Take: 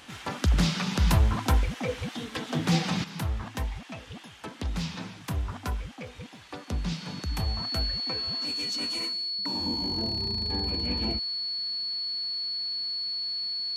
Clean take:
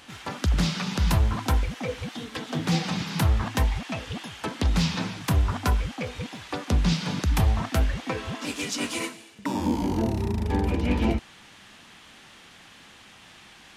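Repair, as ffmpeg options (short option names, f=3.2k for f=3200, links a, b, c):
-af "bandreject=f=4.4k:w=30,asetnsamples=n=441:p=0,asendcmd='3.04 volume volume 8.5dB',volume=0dB"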